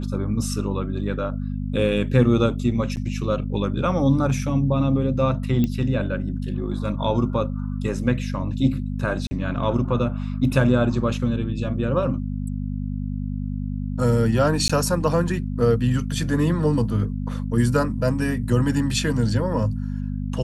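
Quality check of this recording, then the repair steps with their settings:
mains hum 50 Hz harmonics 5 −27 dBFS
0:02.96–0:02.97: drop-out 9.3 ms
0:05.64: click −12 dBFS
0:09.27–0:09.31: drop-out 40 ms
0:14.68–0:14.70: drop-out 15 ms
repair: click removal
hum removal 50 Hz, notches 5
repair the gap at 0:02.96, 9.3 ms
repair the gap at 0:09.27, 40 ms
repair the gap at 0:14.68, 15 ms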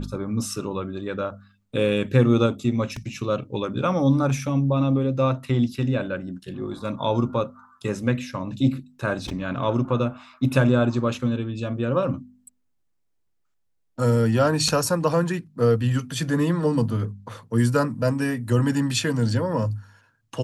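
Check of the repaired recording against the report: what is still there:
none of them is left

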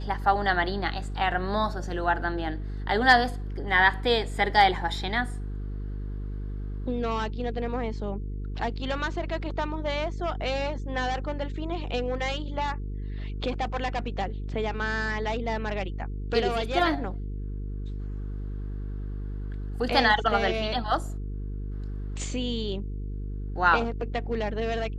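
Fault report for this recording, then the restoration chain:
mains buzz 50 Hz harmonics 9 −33 dBFS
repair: hum removal 50 Hz, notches 9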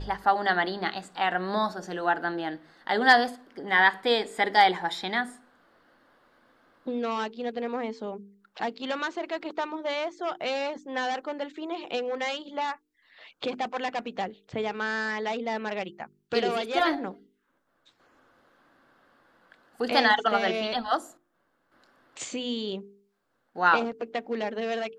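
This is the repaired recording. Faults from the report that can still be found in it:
none of them is left

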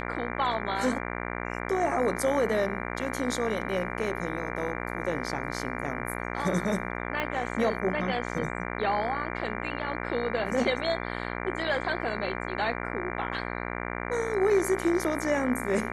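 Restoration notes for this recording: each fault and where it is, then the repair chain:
mains buzz 60 Hz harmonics 39 −34 dBFS
0:07.20: click −16 dBFS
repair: click removal
hum removal 60 Hz, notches 39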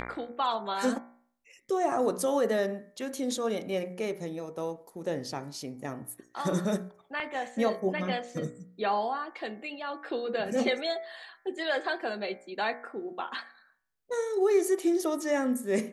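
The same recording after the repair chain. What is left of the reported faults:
0:07.20: click

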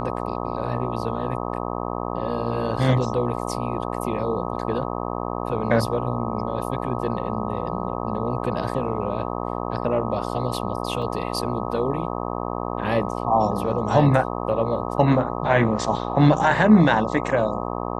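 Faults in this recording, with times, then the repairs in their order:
mains buzz 60 Hz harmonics 21 −28 dBFS
0:11.02: drop-out 2.2 ms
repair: hum removal 60 Hz, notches 21
repair the gap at 0:11.02, 2.2 ms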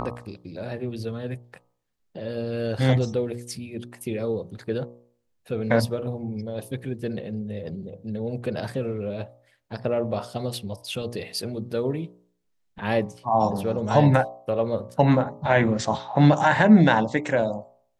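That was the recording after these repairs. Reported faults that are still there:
none of them is left

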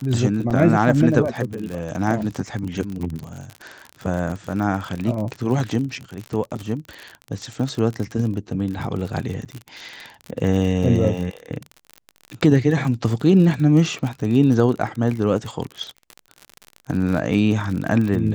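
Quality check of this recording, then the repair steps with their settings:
surface crackle 45 per second −26 dBFS
0:00.50–0:00.51: drop-out 6.5 ms
0:09.45–0:09.46: drop-out 8.1 ms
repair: click removal
repair the gap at 0:00.50, 6.5 ms
repair the gap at 0:09.45, 8.1 ms

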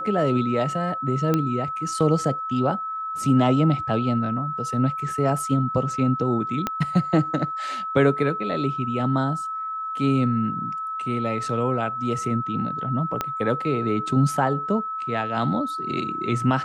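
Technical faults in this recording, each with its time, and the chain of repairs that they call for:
whistle 1,300 Hz −27 dBFS
0:01.34: click −9 dBFS
0:06.67: click −10 dBFS
0:13.21: click −10 dBFS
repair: click removal
notch filter 1,300 Hz, Q 30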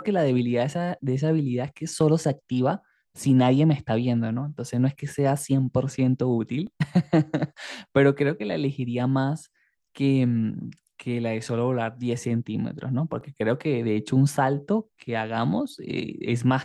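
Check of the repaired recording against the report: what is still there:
0:06.67: click
0:13.21: click

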